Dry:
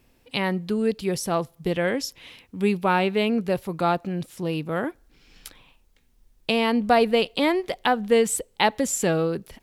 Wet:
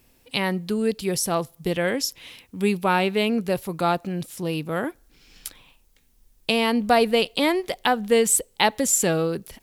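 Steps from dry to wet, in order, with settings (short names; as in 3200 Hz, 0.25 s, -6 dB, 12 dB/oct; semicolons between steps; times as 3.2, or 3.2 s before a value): high shelf 5200 Hz +9.5 dB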